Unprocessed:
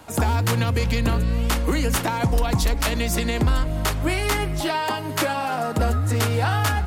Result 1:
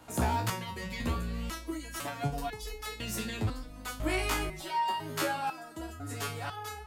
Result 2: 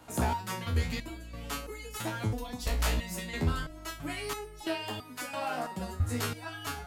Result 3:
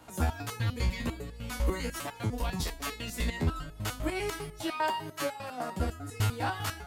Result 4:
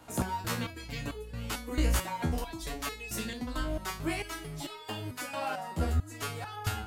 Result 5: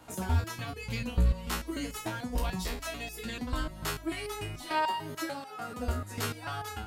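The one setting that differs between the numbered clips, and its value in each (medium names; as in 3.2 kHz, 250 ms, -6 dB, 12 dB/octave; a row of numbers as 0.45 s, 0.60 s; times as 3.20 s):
resonator arpeggio, rate: 2 Hz, 3 Hz, 10 Hz, 4.5 Hz, 6.8 Hz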